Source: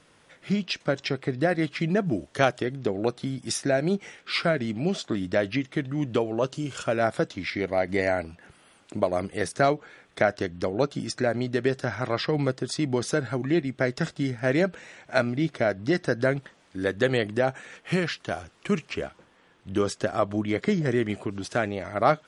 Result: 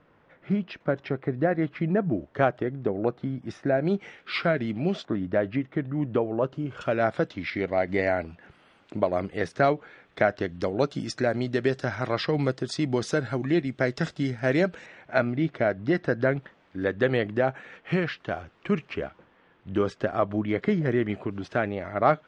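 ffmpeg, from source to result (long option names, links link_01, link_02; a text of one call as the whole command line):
ffmpeg -i in.wav -af "asetnsamples=nb_out_samples=441:pad=0,asendcmd='3.85 lowpass f 3200;5.05 lowpass f 1600;6.81 lowpass f 3400;10.49 lowpass f 6100;14.86 lowpass f 2700',lowpass=1600" out.wav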